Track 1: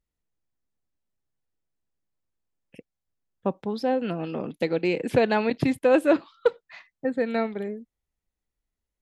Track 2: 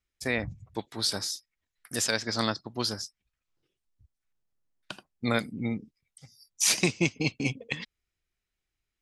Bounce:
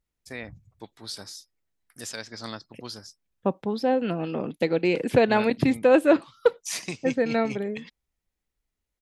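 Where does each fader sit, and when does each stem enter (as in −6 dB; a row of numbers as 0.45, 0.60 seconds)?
+1.5, −8.5 decibels; 0.00, 0.05 seconds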